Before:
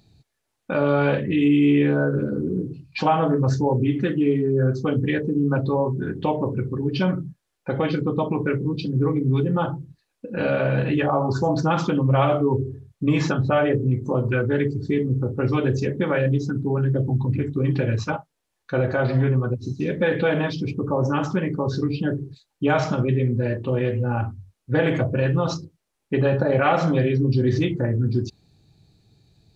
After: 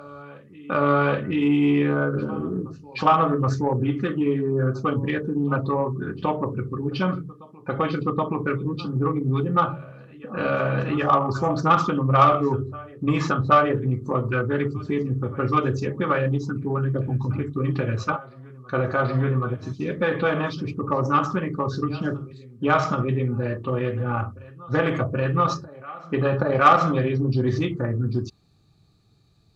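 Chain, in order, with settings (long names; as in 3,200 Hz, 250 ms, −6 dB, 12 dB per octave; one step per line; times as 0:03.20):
hollow resonant body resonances 1,200 Hz, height 16 dB, ringing for 25 ms
backwards echo 775 ms −20.5 dB
harmonic generator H 3 −25 dB, 7 −34 dB, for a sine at −1.5 dBFS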